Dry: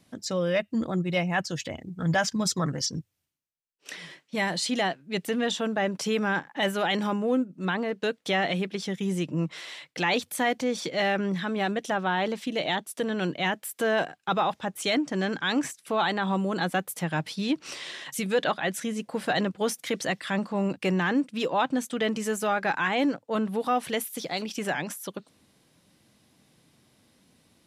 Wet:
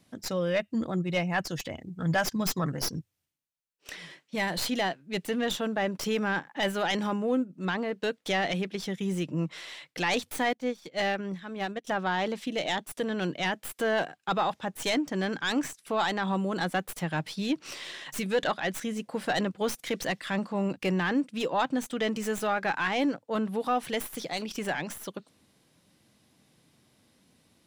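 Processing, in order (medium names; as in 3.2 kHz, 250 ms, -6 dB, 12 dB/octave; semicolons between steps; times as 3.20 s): tracing distortion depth 0.081 ms; 10.53–11.87 s: upward expansion 2.5:1, over -36 dBFS; trim -2 dB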